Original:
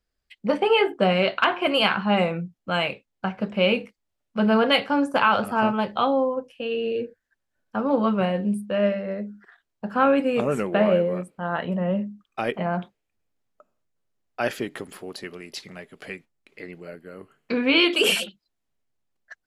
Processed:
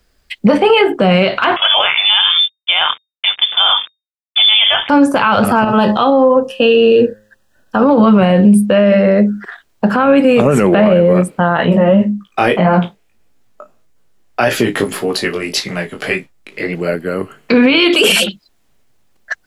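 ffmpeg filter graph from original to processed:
ffmpeg -i in.wav -filter_complex "[0:a]asettb=1/sr,asplit=3[link_01][link_02][link_03];[link_01]atrim=end=1.564[link_04];[link_02]atrim=start=1.56:end=4.89,asetpts=PTS-STARTPTS,afade=type=in:duration=0.004:curve=qsin,afade=type=out:start_time=3.326:duration=0.004:curve=qsin,aeval=exprs='sgn(val(0))*max(abs(val(0))-0.00708,0)':channel_layout=same,tremolo=f=99:d=0.462,lowpass=frequency=3100:width_type=q:width=0.5098,lowpass=frequency=3100:width_type=q:width=0.6013,lowpass=frequency=3100:width_type=q:width=0.9,lowpass=frequency=3100:width_type=q:width=2.563,afreqshift=-3700[link_05];[link_03]atrim=start=4.886[link_06];[link_04][link_05]acrossfade=duration=0.004:curve1=hsin:curve2=qsin[link_07];[link_07][link_06]acrossfade=duration=0.004:curve1=qsin:curve2=hsin,asettb=1/sr,asplit=3[link_08][link_09][link_10];[link_08]atrim=end=5.644[link_11];[link_09]atrim=start=5.64:end=7.82,asetpts=PTS-STARTPTS,afade=type=in:duration=0.004:curve=qsin,afade=type=out:start_time=2.176:duration=0.004:curve=qsin,bandreject=frequency=106.1:width_type=h:width=4,bandreject=frequency=212.2:width_type=h:width=4,bandreject=frequency=318.3:width_type=h:width=4,bandreject=frequency=424.4:width_type=h:width=4,bandreject=frequency=530.5:width_type=h:width=4,bandreject=frequency=636.6:width_type=h:width=4,bandreject=frequency=742.7:width_type=h:width=4,bandreject=frequency=848.8:width_type=h:width=4,bandreject=frequency=954.9:width_type=h:width=4,bandreject=frequency=1061:width_type=h:width=4,bandreject=frequency=1167.1:width_type=h:width=4,bandreject=frequency=1273.2:width_type=h:width=4,acompressor=threshold=-26dB:ratio=6:attack=3.2:release=140:knee=1:detection=peak,asuperstop=centerf=2200:order=8:qfactor=5.2[link_12];[link_10]atrim=start=7.816[link_13];[link_11][link_12]acrossfade=duration=0.004:curve1=hsin:curve2=qsin[link_14];[link_14][link_13]acrossfade=duration=0.004:curve1=qsin:curve2=hsin,asettb=1/sr,asplit=3[link_15][link_16][link_17];[link_15]atrim=end=11.574[link_18];[link_16]atrim=start=11.57:end=16.75,asetpts=PTS-STARTPTS,afade=type=in:duration=0.004:curve=qsin,afade=type=out:start_time=5.176:duration=0.004:curve=qsin,asplit=2[link_19][link_20];[link_20]adelay=35,volume=-13dB[link_21];[link_19][link_21]amix=inputs=2:normalize=0,atrim=end_sample=228438,flanger=delay=15:depth=5.4:speed=1.7[link_22];[link_17]atrim=start=16.746[link_23];[link_18][link_22]acrossfade=duration=0.004:curve1=hsin:curve2=qsin[link_24];[link_24][link_23]acrossfade=duration=0.004:curve1=qsin:curve2=hsin,acrossover=split=160[link_25][link_26];[link_26]acompressor=threshold=-26dB:ratio=3[link_27];[link_25][link_27]amix=inputs=2:normalize=0,alimiter=level_in=23dB:limit=-1dB:release=50:level=0:latency=1,volume=-1dB" out.wav

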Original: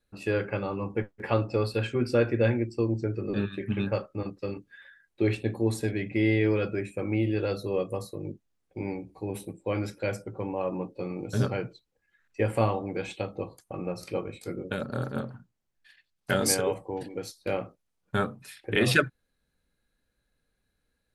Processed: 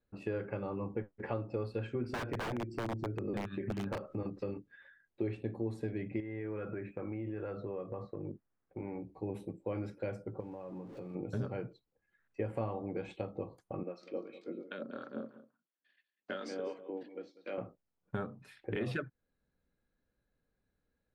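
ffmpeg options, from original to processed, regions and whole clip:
ffmpeg -i in.wav -filter_complex "[0:a]asettb=1/sr,asplit=3[link_01][link_02][link_03];[link_01]atrim=end=2.044[link_04];[link_02]atrim=start=2.04:end=4.51,asetpts=PTS-STARTPTS,afade=type=in:duration=0.004:curve=qsin,afade=type=out:start_time=2.466:duration=0.004:curve=qsin,acompressor=mode=upward:threshold=-26dB:ratio=2.5:attack=3.2:release=140:knee=2.83:detection=peak,aeval=exprs='(mod(10*val(0)+1,2)-1)/10':channel_layout=same[link_05];[link_03]atrim=start=4.506[link_06];[link_04][link_05]acrossfade=duration=0.004:curve1=hsin:curve2=qsin[link_07];[link_07][link_06]acrossfade=duration=0.004:curve1=qsin:curve2=hsin,asettb=1/sr,asplit=3[link_08][link_09][link_10];[link_08]atrim=end=6.204[link_11];[link_09]atrim=start=6.2:end=9.03,asetpts=PTS-STARTPTS,afade=type=in:duration=0.004:curve=qsin,afade=type=out:start_time=2.826:duration=0.004:curve=qsin,lowpass=2300,equalizer=frequency=1500:width=0.88:gain=8,acompressor=threshold=-33dB:ratio=5:attack=3.2:release=140:knee=1:detection=peak[link_12];[link_10]atrim=start=9.026[link_13];[link_11][link_12]acrossfade=duration=0.004:curve1=hsin:curve2=qsin[link_14];[link_14][link_13]acrossfade=duration=0.004:curve1=qsin:curve2=hsin,asettb=1/sr,asplit=3[link_15][link_16][link_17];[link_15]atrim=end=10.404[link_18];[link_16]atrim=start=10.4:end=11.15,asetpts=PTS-STARTPTS,afade=type=in:duration=0.004:curve=qsin,afade=type=out:start_time=0.746:duration=0.004:curve=qsin,aeval=exprs='val(0)+0.5*0.00708*sgn(val(0))':channel_layout=same,bass=frequency=250:gain=3,treble=frequency=4000:gain=4,acompressor=threshold=-39dB:ratio=6:attack=3.2:release=140:knee=1:detection=peak[link_19];[link_17]atrim=start=11.146[link_20];[link_18][link_19]acrossfade=duration=0.004:curve1=hsin:curve2=qsin[link_21];[link_21][link_20]acrossfade=duration=0.004:curve1=qsin:curve2=hsin,asettb=1/sr,asplit=3[link_22][link_23][link_24];[link_22]atrim=end=13.834[link_25];[link_23]atrim=start=13.83:end=17.58,asetpts=PTS-STARTPTS,afade=type=in:duration=0.004:curve=qsin,afade=type=out:start_time=3.746:duration=0.004:curve=qsin,acrossover=split=800[link_26][link_27];[link_26]aeval=exprs='val(0)*(1-0.7/2+0.7/2*cos(2*PI*2.9*n/s))':channel_layout=same[link_28];[link_27]aeval=exprs='val(0)*(1-0.7/2-0.7/2*cos(2*PI*2.9*n/s))':channel_layout=same[link_29];[link_28][link_29]amix=inputs=2:normalize=0,highpass=frequency=240:width=0.5412,highpass=frequency=240:width=1.3066,equalizer=frequency=420:width_type=q:width=4:gain=-5,equalizer=frequency=840:width_type=q:width=4:gain=-9,equalizer=frequency=3300:width_type=q:width=4:gain=5,lowpass=frequency=6000:width=0.5412,lowpass=frequency=6000:width=1.3066,aecho=1:1:194:0.141,atrim=end_sample=165375[link_30];[link_24]atrim=start=17.576[link_31];[link_25][link_30]acrossfade=duration=0.004:curve1=hsin:curve2=qsin[link_32];[link_32][link_31]acrossfade=duration=0.004:curve1=qsin:curve2=hsin,acompressor=threshold=-32dB:ratio=3,lowpass=frequency=1000:poles=1,lowshelf=frequency=68:gain=-5.5,volume=-1.5dB" out.wav

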